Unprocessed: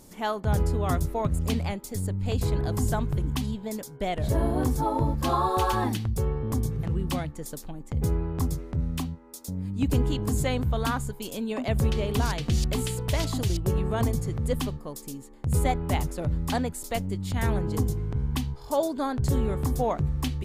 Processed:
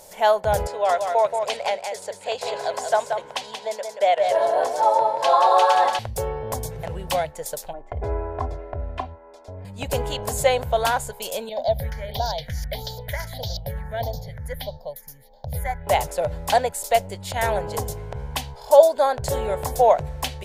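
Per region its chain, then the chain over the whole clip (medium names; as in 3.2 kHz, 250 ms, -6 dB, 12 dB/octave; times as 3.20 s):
0.67–5.99 s: band-pass 440–6300 Hz + delay 180 ms -6 dB
7.73–9.65 s: low-pass 1.6 kHz + comb 2.9 ms, depth 81%
11.49–15.87 s: phase shifter stages 4, 1.6 Hz, lowest notch 610–2100 Hz + static phaser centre 1.8 kHz, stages 8
whole clip: resonant low shelf 410 Hz -12 dB, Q 3; band-stop 1.2 kHz, Q 5; trim +7.5 dB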